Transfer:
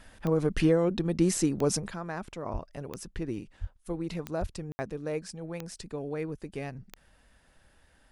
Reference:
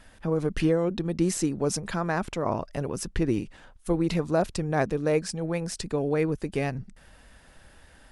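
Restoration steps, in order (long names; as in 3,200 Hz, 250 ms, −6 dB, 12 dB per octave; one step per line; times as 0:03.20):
click removal
0:02.52–0:02.64: high-pass filter 140 Hz 24 dB per octave
0:03.60–0:03.72: high-pass filter 140 Hz 24 dB per octave
0:04.40–0:04.52: high-pass filter 140 Hz 24 dB per octave
ambience match 0:04.72–0:04.79
0:01.88: level correction +9 dB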